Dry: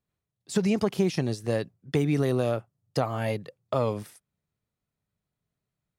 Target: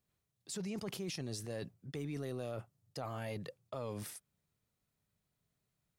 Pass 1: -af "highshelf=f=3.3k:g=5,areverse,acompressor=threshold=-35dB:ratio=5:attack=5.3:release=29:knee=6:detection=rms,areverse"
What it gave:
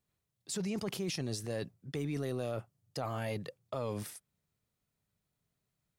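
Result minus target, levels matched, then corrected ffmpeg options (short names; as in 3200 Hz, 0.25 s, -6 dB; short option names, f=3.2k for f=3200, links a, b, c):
compressor: peak gain reduction -5 dB
-af "highshelf=f=3.3k:g=5,areverse,acompressor=threshold=-41dB:ratio=5:attack=5.3:release=29:knee=6:detection=rms,areverse"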